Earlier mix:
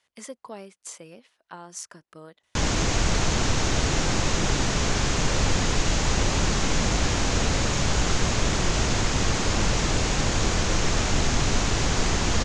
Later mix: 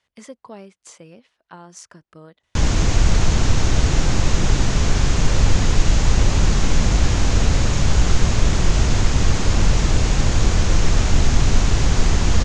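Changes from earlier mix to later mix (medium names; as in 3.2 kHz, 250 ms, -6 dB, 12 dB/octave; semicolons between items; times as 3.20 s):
speech: add distance through air 51 m; master: add bass shelf 150 Hz +11 dB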